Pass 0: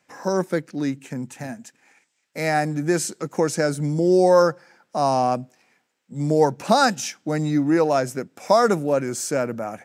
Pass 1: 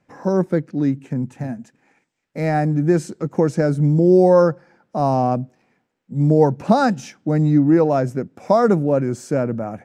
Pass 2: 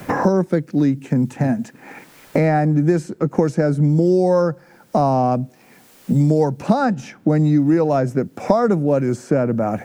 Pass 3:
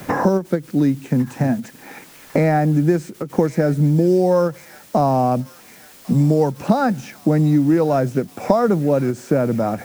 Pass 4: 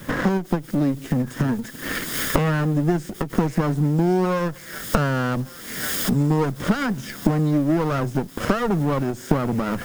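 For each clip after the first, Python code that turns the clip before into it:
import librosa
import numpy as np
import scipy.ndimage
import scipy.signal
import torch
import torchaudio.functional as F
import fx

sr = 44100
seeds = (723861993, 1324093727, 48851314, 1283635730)

y1 = fx.tilt_eq(x, sr, slope=-3.5)
y1 = y1 * 10.0 ** (-1.0 / 20.0)
y2 = fx.quant_dither(y1, sr, seeds[0], bits=12, dither='triangular')
y2 = fx.band_squash(y2, sr, depth_pct=100)
y3 = fx.quant_dither(y2, sr, seeds[1], bits=8, dither='triangular')
y3 = fx.echo_wet_highpass(y3, sr, ms=1101, feedback_pct=60, hz=2200.0, wet_db=-10.0)
y3 = fx.end_taper(y3, sr, db_per_s=280.0)
y4 = fx.lower_of_two(y3, sr, delay_ms=0.58)
y4 = fx.recorder_agc(y4, sr, target_db=-12.0, rise_db_per_s=46.0, max_gain_db=30)
y4 = y4 * 10.0 ** (-3.5 / 20.0)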